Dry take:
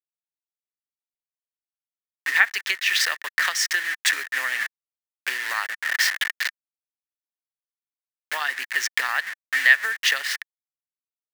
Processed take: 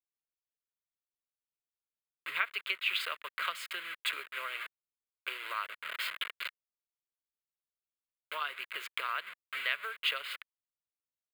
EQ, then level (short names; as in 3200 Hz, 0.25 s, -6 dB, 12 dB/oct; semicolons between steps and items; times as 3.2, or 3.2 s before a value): tone controls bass +6 dB, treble -9 dB; fixed phaser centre 1200 Hz, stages 8; -5.0 dB